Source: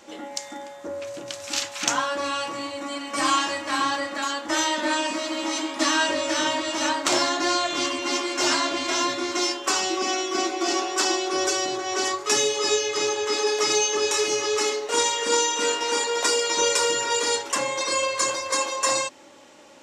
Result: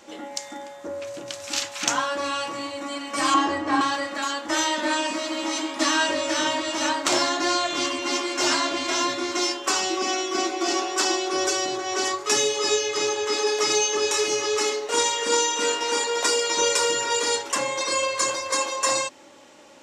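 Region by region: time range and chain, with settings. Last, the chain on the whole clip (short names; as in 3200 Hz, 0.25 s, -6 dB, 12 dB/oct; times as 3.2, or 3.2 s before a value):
3.34–3.81 LPF 8500 Hz 24 dB/oct + tilt shelf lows +8.5 dB, about 1400 Hz + comb 2.6 ms, depth 44%
whole clip: dry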